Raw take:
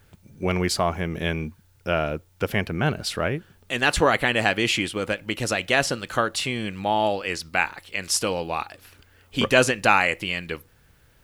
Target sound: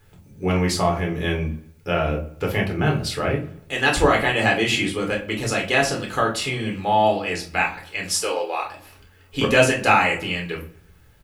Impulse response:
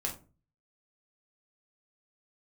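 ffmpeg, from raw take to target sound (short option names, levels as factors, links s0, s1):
-filter_complex "[0:a]asettb=1/sr,asplit=3[s0][s1][s2];[s0]atrim=end=8.174[s3];[s1]atrim=start=8.17:end=8.63,asetpts=PTS-STARTPTS,afade=t=in:d=0.004:c=qsin,afade=t=out:st=0.456:d=0.004:c=qsin,highpass=f=370:w=0.5412,highpass=f=370:w=1.3066[s4];[s2]atrim=start=8.626[s5];[s3][s4]acrossfade=d=0.004:c1=hsin:c2=qsin[s6];[s6][s5]acrossfade=d=0.004:c1=qsin:c2=hsin,asplit=2[s7][s8];[s8]adelay=118,lowpass=f=3300:p=1,volume=0.0891,asplit=2[s9][s10];[s10]adelay=118,lowpass=f=3300:p=1,volume=0.44,asplit=2[s11][s12];[s12]adelay=118,lowpass=f=3300:p=1,volume=0.44[s13];[s7][s9][s11][s13]amix=inputs=4:normalize=0[s14];[1:a]atrim=start_sample=2205[s15];[s14][s15]afir=irnorm=-1:irlink=0,volume=0.891"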